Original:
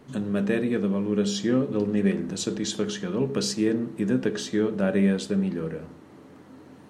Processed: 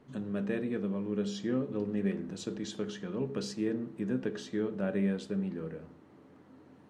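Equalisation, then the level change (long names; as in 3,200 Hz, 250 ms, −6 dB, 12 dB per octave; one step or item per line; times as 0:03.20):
high-shelf EQ 4,900 Hz −9.5 dB
−8.5 dB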